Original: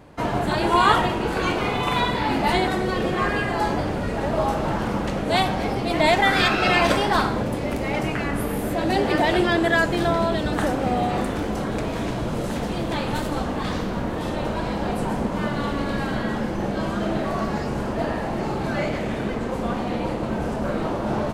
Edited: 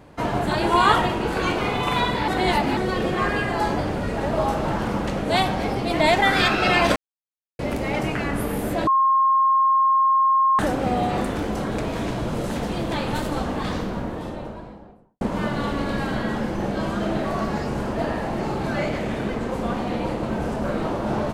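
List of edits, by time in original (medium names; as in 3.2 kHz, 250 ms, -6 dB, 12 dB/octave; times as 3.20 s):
2.28–2.77 s: reverse
6.96–7.59 s: mute
8.87–10.59 s: bleep 1.07 kHz -14.5 dBFS
13.54–15.21 s: studio fade out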